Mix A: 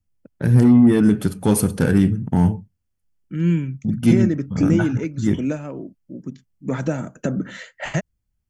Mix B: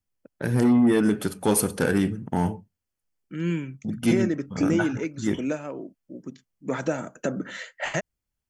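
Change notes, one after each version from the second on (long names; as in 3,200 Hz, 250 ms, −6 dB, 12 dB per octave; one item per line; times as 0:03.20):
master: add bass and treble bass −12 dB, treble 0 dB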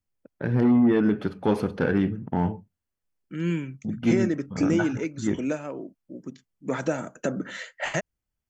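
first voice: add high-frequency loss of the air 290 metres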